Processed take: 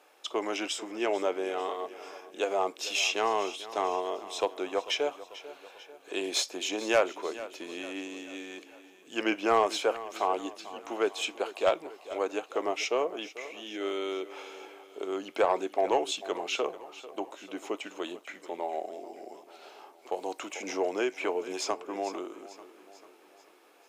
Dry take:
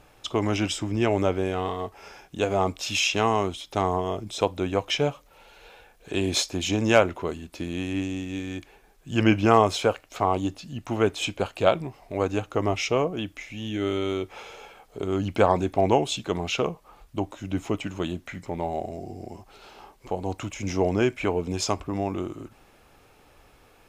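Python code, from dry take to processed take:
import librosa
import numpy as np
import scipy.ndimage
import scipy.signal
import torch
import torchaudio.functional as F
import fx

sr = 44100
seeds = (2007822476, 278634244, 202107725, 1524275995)

p1 = scipy.signal.sosfilt(scipy.signal.butter(4, 350.0, 'highpass', fs=sr, output='sos'), x)
p2 = 10.0 ** (-10.0 / 20.0) * np.tanh(p1 / 10.0 ** (-10.0 / 20.0))
p3 = p2 + fx.echo_feedback(p2, sr, ms=443, feedback_pct=52, wet_db=-16.0, dry=0)
p4 = fx.band_squash(p3, sr, depth_pct=40, at=(20.12, 22.16))
y = p4 * librosa.db_to_amplitude(-3.5)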